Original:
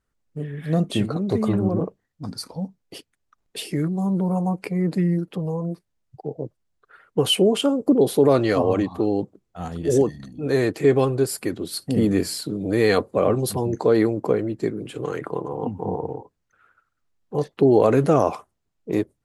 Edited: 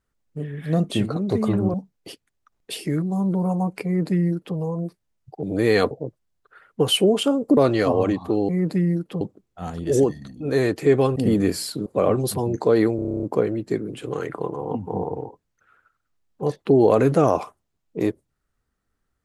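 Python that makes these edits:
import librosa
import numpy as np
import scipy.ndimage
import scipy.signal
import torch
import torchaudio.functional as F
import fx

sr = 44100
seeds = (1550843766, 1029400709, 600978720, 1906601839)

y = fx.edit(x, sr, fx.cut(start_s=1.74, length_s=0.86),
    fx.duplicate(start_s=4.71, length_s=0.72, to_s=9.19),
    fx.cut(start_s=7.95, length_s=0.32),
    fx.cut(start_s=11.14, length_s=0.73),
    fx.move(start_s=12.57, length_s=0.48, to_s=6.29),
    fx.stutter(start_s=14.15, slice_s=0.03, count=10), tone=tone)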